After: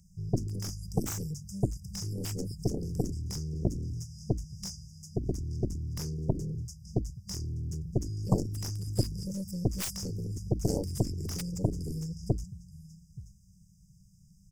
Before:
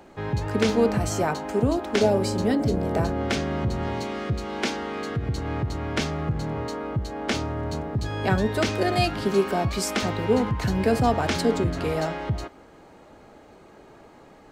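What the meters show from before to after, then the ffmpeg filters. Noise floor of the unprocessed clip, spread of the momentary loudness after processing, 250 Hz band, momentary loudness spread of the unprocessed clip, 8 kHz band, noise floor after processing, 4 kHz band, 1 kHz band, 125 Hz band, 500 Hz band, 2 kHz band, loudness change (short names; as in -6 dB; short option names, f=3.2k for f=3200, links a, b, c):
-50 dBFS, 8 LU, -9.5 dB, 8 LU, -3.5 dB, -59 dBFS, -11.0 dB, -21.0 dB, -4.0 dB, -15.0 dB, -24.5 dB, -9.0 dB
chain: -af "afftfilt=real='re*(1-between(b*sr/4096,200,4800))':imag='im*(1-between(b*sr/4096,200,4800))':win_size=4096:overlap=0.75,aecho=1:1:878:0.126,aeval=exprs='0.224*(cos(1*acos(clip(val(0)/0.224,-1,1)))-cos(1*PI/2))+0.0447*(cos(3*acos(clip(val(0)/0.224,-1,1)))-cos(3*PI/2))+0.0178*(cos(4*acos(clip(val(0)/0.224,-1,1)))-cos(4*PI/2))+0.0447*(cos(7*acos(clip(val(0)/0.224,-1,1)))-cos(7*PI/2))':c=same"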